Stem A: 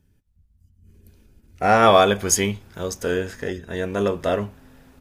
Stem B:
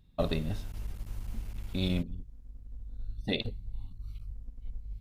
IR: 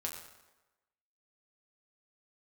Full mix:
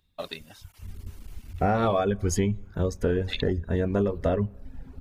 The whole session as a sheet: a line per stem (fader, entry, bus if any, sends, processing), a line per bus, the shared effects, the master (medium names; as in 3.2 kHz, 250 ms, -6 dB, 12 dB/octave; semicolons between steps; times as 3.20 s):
-2.0 dB, 0.00 s, send -14.5 dB, gate -54 dBFS, range -23 dB; tilt EQ -3.5 dB/octave
+2.5 dB, 0.00 s, no send, high-pass 1.2 kHz 6 dB/octave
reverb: on, RT60 1.1 s, pre-delay 6 ms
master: reverb removal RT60 0.66 s; compression 10:1, threshold -20 dBFS, peak gain reduction 11.5 dB